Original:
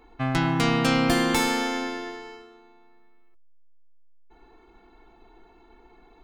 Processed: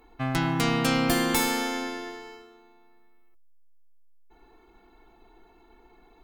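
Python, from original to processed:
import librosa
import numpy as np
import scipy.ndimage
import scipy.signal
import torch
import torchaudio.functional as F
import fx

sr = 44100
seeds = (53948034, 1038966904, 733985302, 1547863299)

y = fx.peak_eq(x, sr, hz=15000.0, db=12.5, octaves=0.89)
y = y * librosa.db_to_amplitude(-2.5)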